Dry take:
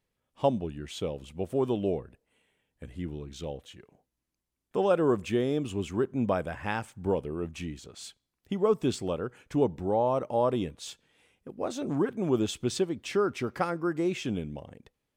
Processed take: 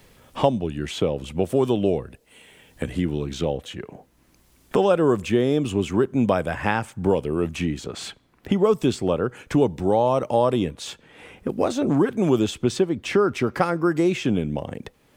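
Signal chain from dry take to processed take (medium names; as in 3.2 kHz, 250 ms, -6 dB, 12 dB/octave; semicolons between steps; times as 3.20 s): three bands compressed up and down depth 70%; trim +7.5 dB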